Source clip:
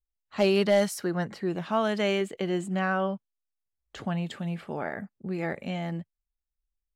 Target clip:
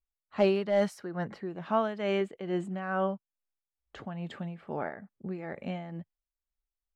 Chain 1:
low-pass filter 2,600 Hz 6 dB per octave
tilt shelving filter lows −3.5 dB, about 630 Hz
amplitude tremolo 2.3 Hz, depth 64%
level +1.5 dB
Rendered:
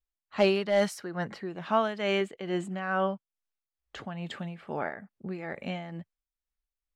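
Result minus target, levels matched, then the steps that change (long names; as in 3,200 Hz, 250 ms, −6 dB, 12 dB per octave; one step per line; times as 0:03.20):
2,000 Hz band +3.5 dB
change: low-pass filter 940 Hz 6 dB per octave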